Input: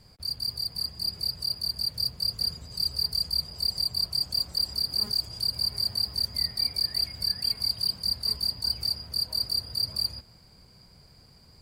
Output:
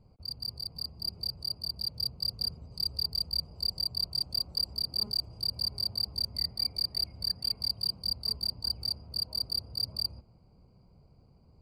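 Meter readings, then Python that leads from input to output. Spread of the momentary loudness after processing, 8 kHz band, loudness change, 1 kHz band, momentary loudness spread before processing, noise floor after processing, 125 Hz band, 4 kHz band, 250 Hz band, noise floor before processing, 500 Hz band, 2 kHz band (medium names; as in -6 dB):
5 LU, -8.0 dB, -4.5 dB, no reading, 4 LU, -61 dBFS, -2.5 dB, -4.5 dB, -2.5 dB, -56 dBFS, -3.5 dB, under -10 dB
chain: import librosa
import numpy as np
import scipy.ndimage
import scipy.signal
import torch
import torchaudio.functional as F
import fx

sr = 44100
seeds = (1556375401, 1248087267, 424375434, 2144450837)

y = fx.wiener(x, sr, points=25)
y = y * librosa.db_to_amplitude(-2.5)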